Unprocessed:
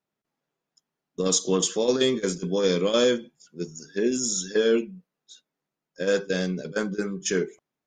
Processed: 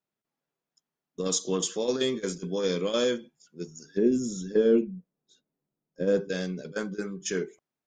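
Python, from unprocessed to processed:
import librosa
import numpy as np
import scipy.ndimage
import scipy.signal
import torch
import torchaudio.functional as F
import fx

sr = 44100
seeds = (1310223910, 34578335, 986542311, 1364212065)

y = fx.tilt_shelf(x, sr, db=9.5, hz=780.0, at=(3.97, 6.29))
y = y * 10.0 ** (-5.0 / 20.0)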